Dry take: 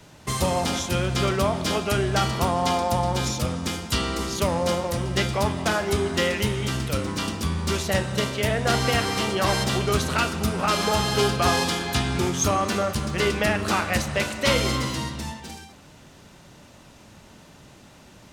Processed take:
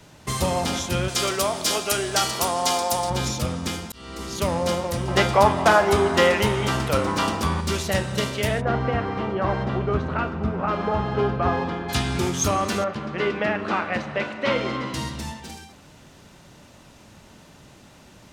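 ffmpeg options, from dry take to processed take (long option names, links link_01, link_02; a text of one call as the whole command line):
ffmpeg -i in.wav -filter_complex "[0:a]asettb=1/sr,asplit=3[link_01][link_02][link_03];[link_01]atrim=end=1.084[link_04];[link_02]atrim=start=1.08:end=3.1,asetpts=PTS-STARTPTS,afade=type=in:duration=0.004:curve=qsin,afade=type=out:start_time=2.016:duration=0.004:curve=qsin,bass=frequency=250:gain=-12,treble=frequency=4000:gain=10[link_05];[link_03]atrim=start=3.096[link_06];[link_04][link_05]acrossfade=duration=0.004:curve1=hsin:curve2=qsin[link_07];[link_07][link_06]acrossfade=duration=0.004:curve1=qsin:curve2=hsin,asettb=1/sr,asplit=3[link_08][link_09][link_10];[link_08]atrim=end=5.084[link_11];[link_09]atrim=start=5.08:end=7.61,asetpts=PTS-STARTPTS,afade=type=in:duration=0.004:curve=qsin,afade=type=out:start_time=2.526:duration=0.004:curve=qsin,equalizer=frequency=870:width=0.63:gain=11[link_12];[link_10]atrim=start=7.606[link_13];[link_11][link_12]acrossfade=duration=0.004:curve1=hsin:curve2=qsin[link_14];[link_14][link_13]acrossfade=duration=0.004:curve1=qsin:curve2=hsin,asplit=3[link_15][link_16][link_17];[link_15]afade=type=out:start_time=8.6:duration=0.02[link_18];[link_16]lowpass=1400,afade=type=in:start_time=8.6:duration=0.02,afade=type=out:start_time=11.88:duration=0.02[link_19];[link_17]afade=type=in:start_time=11.88:duration=0.02[link_20];[link_18][link_19][link_20]amix=inputs=3:normalize=0,asettb=1/sr,asplit=3[link_21][link_22][link_23];[link_21]atrim=end=12.844[link_24];[link_22]atrim=start=12.84:end=14.94,asetpts=PTS-STARTPTS,afade=type=in:duration=0.004:curve=qsin,afade=type=out:start_time=2.096:duration=0.004:curve=qsin,highpass=180,lowpass=2400[link_25];[link_23]atrim=start=14.936[link_26];[link_24][link_25]acrossfade=duration=0.004:curve1=hsin:curve2=qsin[link_27];[link_27][link_26]acrossfade=duration=0.004:curve1=qsin:curve2=hsin,asplit=2[link_28][link_29];[link_28]atrim=end=3.92,asetpts=PTS-STARTPTS,afade=type=out:start_time=3.916:duration=0.004:curve=hsin[link_30];[link_29]atrim=start=3.92,asetpts=PTS-STARTPTS,afade=type=in:duration=0.57[link_31];[link_30][link_31]concat=n=2:v=0:a=1" out.wav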